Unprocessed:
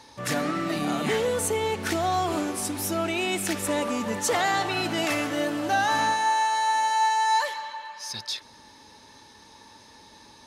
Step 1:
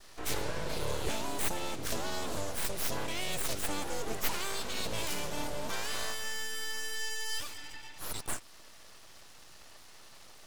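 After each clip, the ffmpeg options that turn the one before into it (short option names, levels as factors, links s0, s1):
-filter_complex "[0:a]adynamicequalizer=threshold=0.0141:dfrequency=1900:dqfactor=0.88:tfrequency=1900:tqfactor=0.88:attack=5:release=100:ratio=0.375:range=2.5:mode=cutabove:tftype=bell,acrossover=split=290|3000[s0][s1][s2];[s1]acompressor=threshold=0.00178:ratio=1.5[s3];[s0][s3][s2]amix=inputs=3:normalize=0,aeval=exprs='abs(val(0))':c=same"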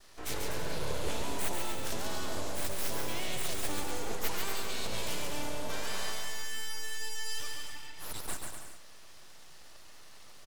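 -af "aecho=1:1:140|245|323.8|382.8|427.1:0.631|0.398|0.251|0.158|0.1,volume=0.708"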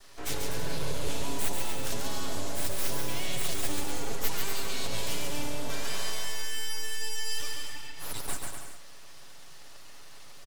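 -filter_complex "[0:a]aecho=1:1:7.2:0.4,acrossover=split=310|3000[s0][s1][s2];[s1]acompressor=threshold=0.01:ratio=6[s3];[s0][s3][s2]amix=inputs=3:normalize=0,volume=1.41"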